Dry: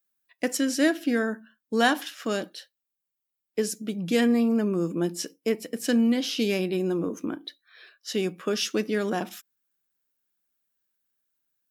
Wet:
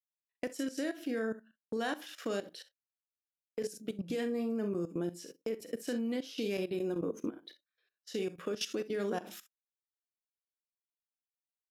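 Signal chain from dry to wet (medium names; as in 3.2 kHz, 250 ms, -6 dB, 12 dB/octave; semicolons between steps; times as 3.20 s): peaking EQ 470 Hz +5 dB 0.69 oct; gate -44 dBFS, range -24 dB; compression 2.5:1, threshold -27 dBFS, peak gain reduction 8.5 dB; early reflections 40 ms -10 dB, 63 ms -13 dB; level held to a coarse grid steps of 15 dB; trim -3.5 dB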